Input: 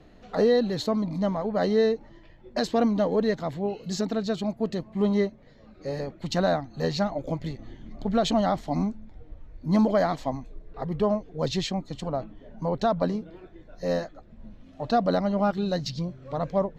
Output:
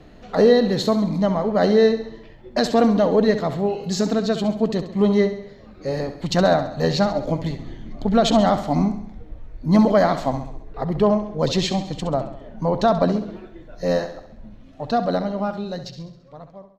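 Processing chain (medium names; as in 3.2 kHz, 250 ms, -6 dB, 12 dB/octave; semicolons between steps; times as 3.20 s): fade out at the end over 3.07 s; feedback delay 67 ms, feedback 53%, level -11 dB; trim +6.5 dB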